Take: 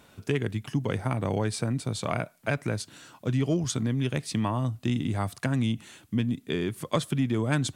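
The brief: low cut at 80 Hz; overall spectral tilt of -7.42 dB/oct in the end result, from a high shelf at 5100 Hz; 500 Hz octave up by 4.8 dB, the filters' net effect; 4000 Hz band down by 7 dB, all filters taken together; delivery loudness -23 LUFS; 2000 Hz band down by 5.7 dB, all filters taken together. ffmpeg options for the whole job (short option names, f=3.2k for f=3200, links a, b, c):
-af "highpass=80,equalizer=f=500:t=o:g=6.5,equalizer=f=2k:t=o:g=-6.5,equalizer=f=4k:t=o:g=-5.5,highshelf=f=5.1k:g=-3,volume=5dB"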